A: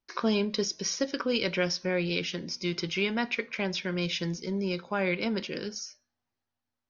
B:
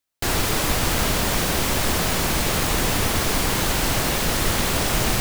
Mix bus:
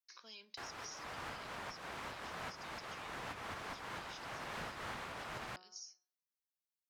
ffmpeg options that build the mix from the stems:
ffmpeg -i stem1.wav -i stem2.wav -filter_complex "[0:a]alimiter=limit=-22dB:level=0:latency=1:release=409,aderivative,volume=-6dB,asplit=2[link_01][link_02];[1:a]bandpass=frequency=1200:width_type=q:width=0.96:csg=0,adelay=350,volume=0.5dB[link_03];[link_02]apad=whole_len=245184[link_04];[link_03][link_04]sidechaincompress=threshold=-59dB:ratio=8:attack=40:release=301[link_05];[link_01][link_05]amix=inputs=2:normalize=0,bandreject=frequency=183:width_type=h:width=4,bandreject=frequency=366:width_type=h:width=4,bandreject=frequency=549:width_type=h:width=4,bandreject=frequency=732:width_type=h:width=4,bandreject=frequency=915:width_type=h:width=4,bandreject=frequency=1098:width_type=h:width=4,bandreject=frequency=1281:width_type=h:width=4,bandreject=frequency=1464:width_type=h:width=4,acrossover=split=170[link_06][link_07];[link_07]acompressor=threshold=-48dB:ratio=2.5[link_08];[link_06][link_08]amix=inputs=2:normalize=0" out.wav

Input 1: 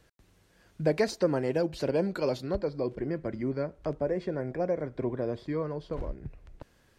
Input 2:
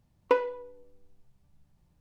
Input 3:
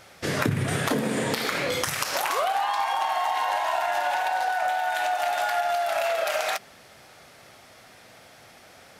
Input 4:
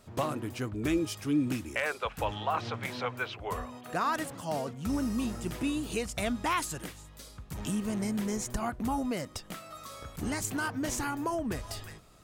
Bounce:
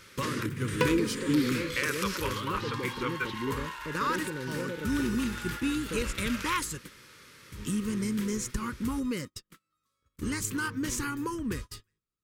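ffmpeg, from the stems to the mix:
ffmpeg -i stem1.wav -i stem2.wav -i stem3.wav -i stem4.wav -filter_complex "[0:a]alimiter=limit=-24dB:level=0:latency=1,volume=-1.5dB,asplit=3[link_01][link_02][link_03];[link_01]atrim=end=5.19,asetpts=PTS-STARTPTS,afade=type=out:start_time=5.186:duration=0.004:curve=hsin[link_04];[link_02]atrim=start=5.19:end=5.9,asetpts=PTS-STARTPTS,volume=0[link_05];[link_03]atrim=start=5.9,asetpts=PTS-STARTPTS,afade=type=in:duration=0.004:curve=hsin[link_06];[link_04][link_05][link_06]concat=n=3:v=0:a=1[link_07];[1:a]crystalizer=i=6.5:c=0,adelay=500,volume=-3dB[link_08];[2:a]bandreject=frequency=78.02:width_type=h:width=4,bandreject=frequency=156.04:width_type=h:width=4,bandreject=frequency=234.06:width_type=h:width=4,bandreject=frequency=312.08:width_type=h:width=4,bandreject=frequency=390.1:width_type=h:width=4,bandreject=frequency=468.12:width_type=h:width=4,bandreject=frequency=546.14:width_type=h:width=4,bandreject=frequency=624.16:width_type=h:width=4,bandreject=frequency=702.18:width_type=h:width=4,bandreject=frequency=780.2:width_type=h:width=4,bandreject=frequency=858.22:width_type=h:width=4,bandreject=frequency=936.24:width_type=h:width=4,bandreject=frequency=1014.26:width_type=h:width=4,bandreject=frequency=1092.28:width_type=h:width=4,bandreject=frequency=1170.3:width_type=h:width=4,bandreject=frequency=1248.32:width_type=h:width=4,bandreject=frequency=1326.34:width_type=h:width=4,bandreject=frequency=1404.36:width_type=h:width=4,bandreject=frequency=1482.38:width_type=h:width=4,bandreject=frequency=1560.4:width_type=h:width=4,bandreject=frequency=1638.42:width_type=h:width=4,bandreject=frequency=1716.44:width_type=h:width=4,bandreject=frequency=1794.46:width_type=h:width=4,bandreject=frequency=1872.48:width_type=h:width=4,bandreject=frequency=1950.5:width_type=h:width=4,bandreject=frequency=2028.52:width_type=h:width=4,bandreject=frequency=2106.54:width_type=h:width=4,bandreject=frequency=2184.56:width_type=h:width=4,bandreject=frequency=2262.58:width_type=h:width=4,bandreject=frequency=2340.6:width_type=h:width=4,acompressor=threshold=-31dB:ratio=6,volume=-1dB[link_09];[3:a]agate=range=-36dB:threshold=-37dB:ratio=16:detection=peak,volume=1.5dB[link_10];[link_07][link_08][link_09][link_10]amix=inputs=4:normalize=0,asuperstop=centerf=710:order=4:qfactor=1.3" out.wav

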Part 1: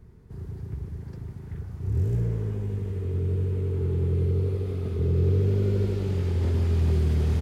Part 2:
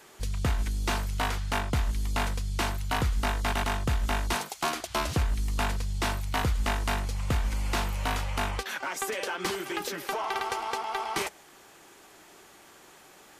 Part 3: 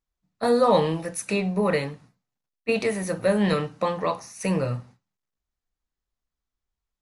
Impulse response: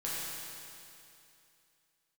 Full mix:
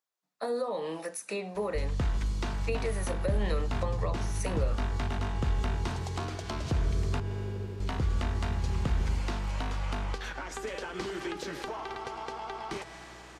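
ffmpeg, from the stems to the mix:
-filter_complex "[0:a]adelay=1800,volume=-12dB[link_01];[1:a]acompressor=threshold=-38dB:ratio=1.5,lowpass=6300,aeval=exprs='val(0)+0.00141*(sin(2*PI*60*n/s)+sin(2*PI*2*60*n/s)/2+sin(2*PI*3*60*n/s)/3+sin(2*PI*4*60*n/s)/4+sin(2*PI*5*60*n/s)/5)':channel_layout=same,adelay=1550,volume=1.5dB,asplit=3[link_02][link_03][link_04];[link_02]atrim=end=7.2,asetpts=PTS-STARTPTS,afade=type=out:start_time=7.196:duration=0.004:curve=hsin[link_05];[link_03]atrim=start=7.2:end=7.8,asetpts=PTS-STARTPTS,volume=0[link_06];[link_04]atrim=start=7.8,asetpts=PTS-STARTPTS,afade=type=in:duration=0.004:curve=hsin[link_07];[link_05][link_06][link_07]concat=n=3:v=0:a=1,asplit=2[link_08][link_09];[link_09]volume=-12.5dB[link_10];[2:a]highpass=500,acompressor=threshold=-23dB:ratio=6,volume=1dB[link_11];[3:a]atrim=start_sample=2205[link_12];[link_10][link_12]afir=irnorm=-1:irlink=0[link_13];[link_01][link_08][link_11][link_13]amix=inputs=4:normalize=0,equalizer=frequency=2500:width=1.5:gain=-2,acrossover=split=430[link_14][link_15];[link_15]acompressor=threshold=-37dB:ratio=6[link_16];[link_14][link_16]amix=inputs=2:normalize=0"

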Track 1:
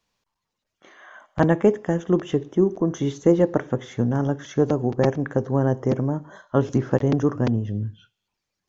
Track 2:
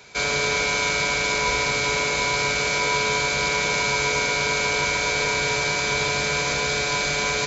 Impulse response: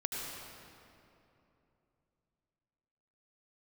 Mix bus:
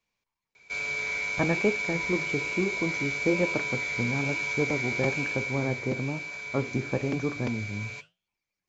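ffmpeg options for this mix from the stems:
-filter_complex "[0:a]volume=-4dB[link_01];[1:a]adelay=550,volume=-12dB,afade=type=out:start_time=5.17:duration=0.66:silence=0.473151[link_02];[link_01][link_02]amix=inputs=2:normalize=0,equalizer=frequency=2300:width=6.9:gain=12.5,flanger=delay=8.3:depth=7.6:regen=-80:speed=1.1:shape=sinusoidal"

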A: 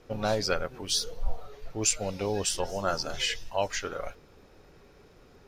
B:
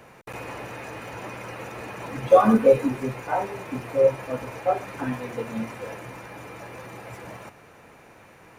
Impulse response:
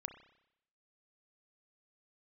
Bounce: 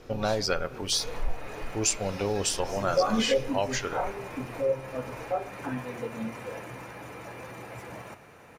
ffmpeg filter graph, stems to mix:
-filter_complex "[0:a]volume=2.5dB,asplit=2[link_01][link_02];[link_02]volume=-1.5dB[link_03];[1:a]adelay=650,volume=-5.5dB,asplit=2[link_04][link_05];[link_05]volume=-2dB[link_06];[2:a]atrim=start_sample=2205[link_07];[link_03][link_06]amix=inputs=2:normalize=0[link_08];[link_08][link_07]afir=irnorm=-1:irlink=0[link_09];[link_01][link_04][link_09]amix=inputs=3:normalize=0,acompressor=threshold=-34dB:ratio=1.5"

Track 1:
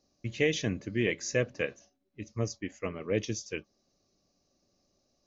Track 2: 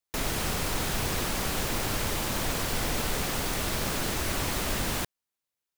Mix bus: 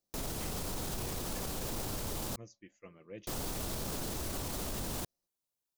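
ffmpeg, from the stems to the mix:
ffmpeg -i stem1.wav -i stem2.wav -filter_complex "[0:a]aecho=1:1:5.8:0.43,volume=-18.5dB[link_01];[1:a]equalizer=frequency=2000:width=0.83:gain=-9.5,volume=-0.5dB,asplit=3[link_02][link_03][link_04];[link_02]atrim=end=2.36,asetpts=PTS-STARTPTS,afade=type=out:start_time=2.356:duration=0.004:curve=hsin[link_05];[link_03]atrim=start=2.36:end=3.27,asetpts=PTS-STARTPTS,volume=0[link_06];[link_04]atrim=start=3.27,asetpts=PTS-STARTPTS,afade=type=in:duration=0.004:curve=hsin[link_07];[link_05][link_06][link_07]concat=n=3:v=0:a=1[link_08];[link_01][link_08]amix=inputs=2:normalize=0,alimiter=level_in=4.5dB:limit=-24dB:level=0:latency=1:release=54,volume=-4.5dB" out.wav

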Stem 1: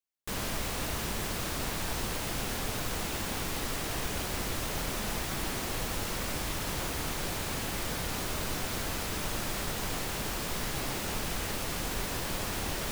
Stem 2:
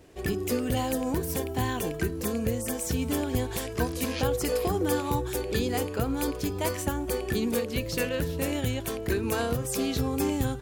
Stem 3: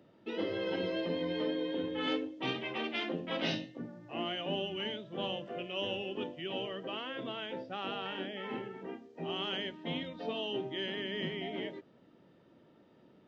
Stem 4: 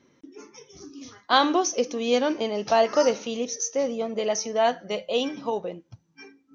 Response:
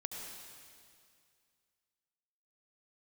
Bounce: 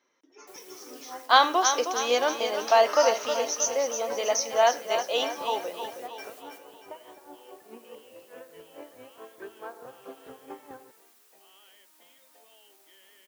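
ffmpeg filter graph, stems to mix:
-filter_complex "[0:a]alimiter=level_in=1.5dB:limit=-24dB:level=0:latency=1:release=17,volume=-1.5dB,aeval=exprs='(mod(106*val(0)+1,2)-1)/106':channel_layout=same,adelay=200,volume=-14dB,asplit=2[link_01][link_02];[link_02]volume=-9.5dB[link_03];[1:a]lowpass=1100,aeval=exprs='val(0)*pow(10,-20*(0.5-0.5*cos(2*PI*4.7*n/s))/20)':channel_layout=same,adelay=300,volume=-11dB,asplit=2[link_04][link_05];[link_05]volume=-4.5dB[link_06];[2:a]acompressor=threshold=-43dB:ratio=6,adelay=2150,volume=-15.5dB[link_07];[3:a]volume=-3dB,asplit=3[link_08][link_09][link_10];[link_09]volume=-8.5dB[link_11];[link_10]apad=whole_len=578400[link_12];[link_01][link_12]sidechaingate=range=-33dB:threshold=-59dB:ratio=16:detection=peak[link_13];[4:a]atrim=start_sample=2205[link_14];[link_06][link_14]afir=irnorm=-1:irlink=0[link_15];[link_03][link_11]amix=inputs=2:normalize=0,aecho=0:1:316|632|948|1264|1580|1896|2212:1|0.49|0.24|0.118|0.0576|0.0282|0.0138[link_16];[link_13][link_04][link_07][link_08][link_15][link_16]amix=inputs=6:normalize=0,highpass=740,equalizer=frequency=3500:width=0.48:gain=-4,dynaudnorm=framelen=120:gausssize=7:maxgain=8dB"

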